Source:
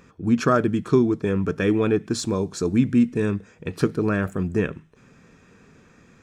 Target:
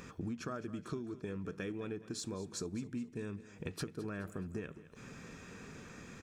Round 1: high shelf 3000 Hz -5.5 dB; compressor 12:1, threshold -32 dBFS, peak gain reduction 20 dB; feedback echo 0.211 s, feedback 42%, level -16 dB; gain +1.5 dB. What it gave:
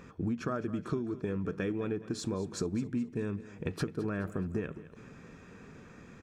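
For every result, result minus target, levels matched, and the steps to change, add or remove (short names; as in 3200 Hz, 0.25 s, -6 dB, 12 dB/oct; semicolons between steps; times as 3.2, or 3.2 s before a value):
8000 Hz band -7.5 dB; compressor: peak gain reduction -7.5 dB
change: high shelf 3000 Hz +5 dB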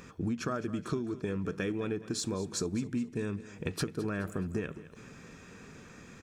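compressor: peak gain reduction -7.5 dB
change: compressor 12:1, threshold -40 dBFS, peak gain reduction 27.5 dB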